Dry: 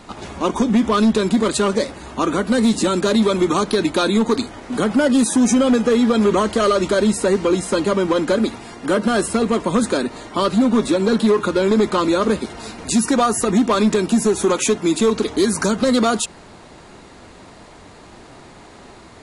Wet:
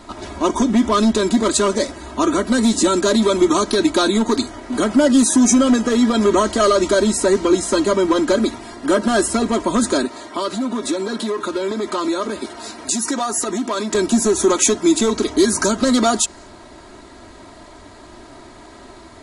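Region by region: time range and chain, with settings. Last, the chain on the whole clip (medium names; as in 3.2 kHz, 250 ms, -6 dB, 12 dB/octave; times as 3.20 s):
10.05–13.95 s: high-pass 290 Hz 6 dB/octave + compression 2.5:1, threshold -21 dBFS
whole clip: peaking EQ 2.6 kHz -4 dB 0.33 oct; comb 3.1 ms, depth 58%; dynamic bell 6.6 kHz, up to +6 dB, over -41 dBFS, Q 1.5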